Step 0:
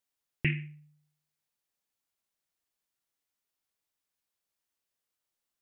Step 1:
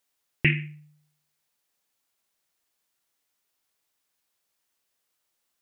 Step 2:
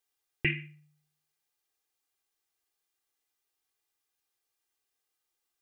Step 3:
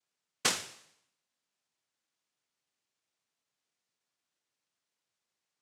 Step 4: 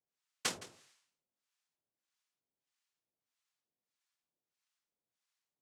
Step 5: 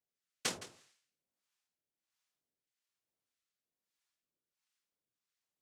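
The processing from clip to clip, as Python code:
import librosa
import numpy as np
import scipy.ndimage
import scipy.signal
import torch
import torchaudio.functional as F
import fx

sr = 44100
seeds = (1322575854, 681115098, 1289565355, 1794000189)

y1 = fx.low_shelf(x, sr, hz=210.0, db=-5.5)
y1 = F.gain(torch.from_numpy(y1), 9.0).numpy()
y2 = y1 + 0.65 * np.pad(y1, (int(2.5 * sr / 1000.0), 0))[:len(y1)]
y2 = F.gain(torch.from_numpy(y2), -7.5).numpy()
y3 = fx.noise_vocoder(y2, sr, seeds[0], bands=1)
y4 = fx.harmonic_tremolo(y3, sr, hz=1.6, depth_pct=100, crossover_hz=810.0)
y4 = y4 + 10.0 ** (-17.0 / 20.0) * np.pad(y4, (int(165 * sr / 1000.0), 0))[:len(y4)]
y4 = F.gain(torch.from_numpy(y4), -1.0).numpy()
y5 = fx.rotary(y4, sr, hz=1.2)
y5 = F.gain(torch.from_numpy(y5), 1.5).numpy()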